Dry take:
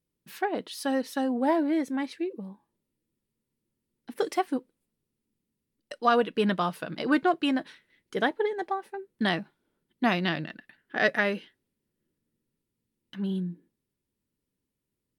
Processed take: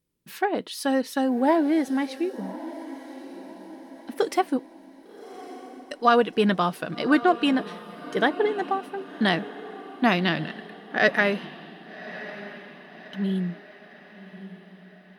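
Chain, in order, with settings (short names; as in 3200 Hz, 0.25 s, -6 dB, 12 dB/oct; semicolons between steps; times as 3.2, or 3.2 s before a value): diffused feedback echo 1.154 s, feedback 48%, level -15 dB; gain +4 dB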